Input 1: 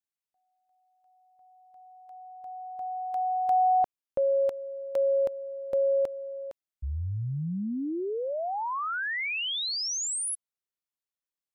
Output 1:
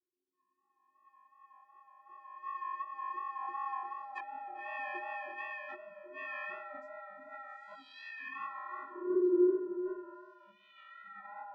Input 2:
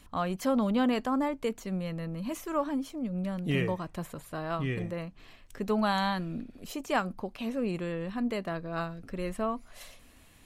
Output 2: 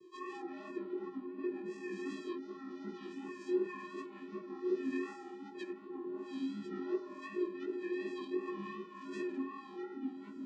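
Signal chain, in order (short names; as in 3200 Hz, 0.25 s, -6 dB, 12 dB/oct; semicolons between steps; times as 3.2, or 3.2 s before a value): spectrum mirrored in octaves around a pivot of 960 Hz; flutter echo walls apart 8.2 m, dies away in 0.52 s; compressor 4:1, threshold -35 dBFS; rotary speaker horn 0.65 Hz; treble ducked by the level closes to 320 Hz, closed at -35 dBFS; vocoder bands 8, square 361 Hz; echoes that change speed 0.139 s, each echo -5 st, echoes 2, each echo -6 dB; chorus 2.7 Hz, delay 17 ms, depth 5.7 ms; gain +9 dB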